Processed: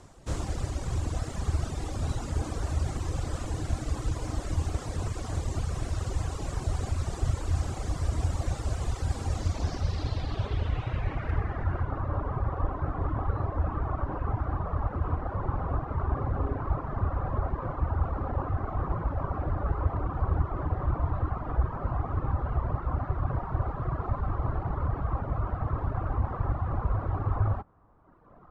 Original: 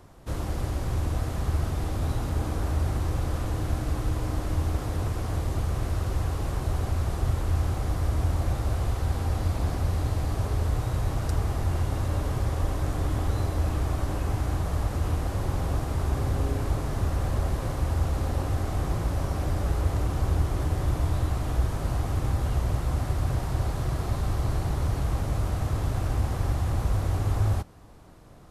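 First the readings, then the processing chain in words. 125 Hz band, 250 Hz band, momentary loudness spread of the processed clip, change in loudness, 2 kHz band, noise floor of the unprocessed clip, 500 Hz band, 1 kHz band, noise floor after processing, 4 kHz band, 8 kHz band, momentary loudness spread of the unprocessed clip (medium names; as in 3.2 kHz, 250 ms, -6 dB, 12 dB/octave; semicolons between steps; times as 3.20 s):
-3.5 dB, -3.5 dB, 3 LU, -3.0 dB, -3.0 dB, -33 dBFS, -2.5 dB, +0.5 dB, -39 dBFS, -4.5 dB, -3.5 dB, 2 LU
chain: tracing distortion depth 0.17 ms; reverb removal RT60 1.6 s; low-pass sweep 7.7 kHz -> 1.2 kHz, 9.29–12.04 s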